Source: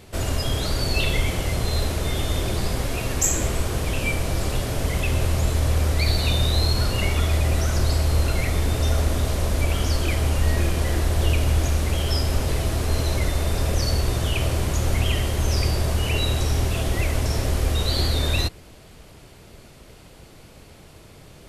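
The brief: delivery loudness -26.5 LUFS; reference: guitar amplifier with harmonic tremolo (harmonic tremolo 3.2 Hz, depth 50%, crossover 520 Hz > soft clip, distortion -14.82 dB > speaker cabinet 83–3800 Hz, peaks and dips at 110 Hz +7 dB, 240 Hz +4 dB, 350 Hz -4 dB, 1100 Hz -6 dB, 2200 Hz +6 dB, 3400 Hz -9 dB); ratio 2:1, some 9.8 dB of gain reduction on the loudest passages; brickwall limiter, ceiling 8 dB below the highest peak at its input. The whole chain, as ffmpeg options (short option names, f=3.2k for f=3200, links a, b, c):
-filter_complex "[0:a]acompressor=threshold=-34dB:ratio=2,alimiter=level_in=1dB:limit=-24dB:level=0:latency=1,volume=-1dB,acrossover=split=520[a][b];[a]aeval=exprs='val(0)*(1-0.5/2+0.5/2*cos(2*PI*3.2*n/s))':c=same[c];[b]aeval=exprs='val(0)*(1-0.5/2-0.5/2*cos(2*PI*3.2*n/s))':c=same[d];[c][d]amix=inputs=2:normalize=0,asoftclip=threshold=-32.5dB,highpass=83,equalizer=f=110:t=q:w=4:g=7,equalizer=f=240:t=q:w=4:g=4,equalizer=f=350:t=q:w=4:g=-4,equalizer=f=1.1k:t=q:w=4:g=-6,equalizer=f=2.2k:t=q:w=4:g=6,equalizer=f=3.4k:t=q:w=4:g=-9,lowpass=f=3.8k:w=0.5412,lowpass=f=3.8k:w=1.3066,volume=15dB"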